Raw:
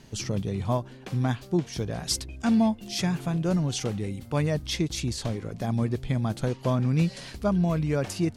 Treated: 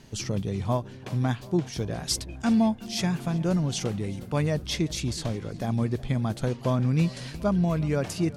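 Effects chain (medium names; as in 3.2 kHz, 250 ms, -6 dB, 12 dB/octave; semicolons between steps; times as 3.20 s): filtered feedback delay 368 ms, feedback 67%, low-pass 4.7 kHz, level -20 dB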